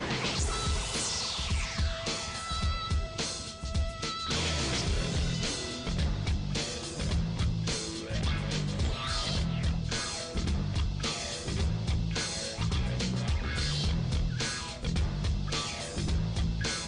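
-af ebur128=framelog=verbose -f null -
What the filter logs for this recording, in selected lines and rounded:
Integrated loudness:
  I:         -31.7 LUFS
  Threshold: -41.7 LUFS
Loudness range:
  LRA:         0.8 LU
  Threshold: -51.8 LUFS
  LRA low:   -32.2 LUFS
  LRA high:  -31.4 LUFS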